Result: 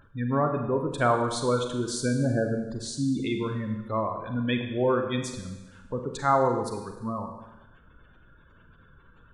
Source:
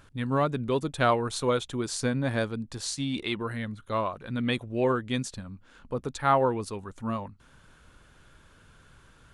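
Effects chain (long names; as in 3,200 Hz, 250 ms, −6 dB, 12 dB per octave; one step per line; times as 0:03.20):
0:02.19–0:03.87: tilt shelving filter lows +4 dB, about 890 Hz
gate on every frequency bin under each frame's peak −20 dB strong
four-comb reverb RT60 1.1 s, combs from 33 ms, DRR 4.5 dB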